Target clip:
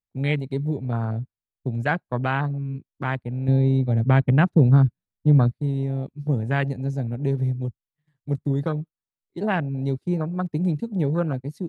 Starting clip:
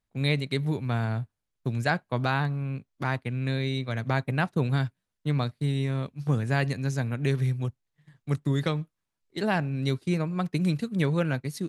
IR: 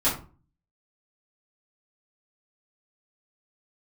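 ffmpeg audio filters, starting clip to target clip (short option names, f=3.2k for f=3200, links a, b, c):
-filter_complex "[0:a]afwtdn=0.0251,asettb=1/sr,asplit=3[a][b][c];[a]atrim=end=3.484[d];[b]atrim=start=3.48:end=5.54,asetpts=PTS-STARTPTS,afade=t=in:d=0.004:c=qsin,afade=t=out:st=2.056:d=0.004:c=qsin,lowshelf=f=370:g=9.5[e];[c]atrim=start=5.536[f];[d][e]acrossfade=d=0.004:c1=hsin:c2=qsin[g];[g][f]acrossfade=d=0.004:c1=qsin:c2=hsin,volume=2.5dB"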